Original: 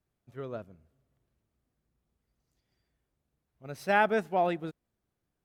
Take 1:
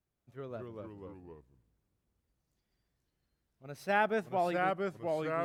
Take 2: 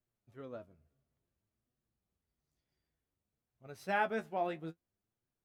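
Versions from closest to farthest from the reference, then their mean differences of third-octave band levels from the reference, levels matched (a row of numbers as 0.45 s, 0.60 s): 2, 1; 1.0 dB, 3.5 dB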